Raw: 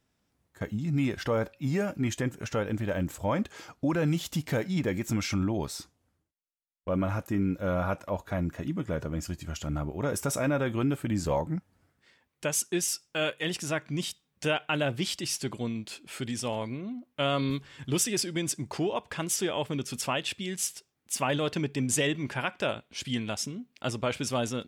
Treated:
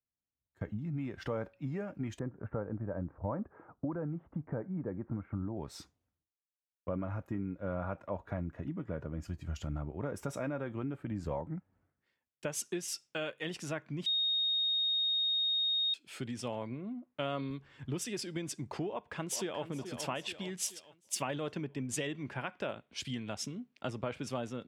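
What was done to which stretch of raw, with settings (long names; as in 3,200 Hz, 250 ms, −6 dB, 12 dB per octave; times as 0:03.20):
0:02.19–0:05.57: low-pass filter 1,400 Hz 24 dB per octave
0:14.06–0:15.94: beep over 3,720 Hz −21 dBFS
0:18.89–0:19.65: delay throw 430 ms, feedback 50%, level −9.5 dB
whole clip: high-shelf EQ 5,000 Hz −11.5 dB; downward compressor 5 to 1, threshold −36 dBFS; multiband upward and downward expander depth 70%; level +1 dB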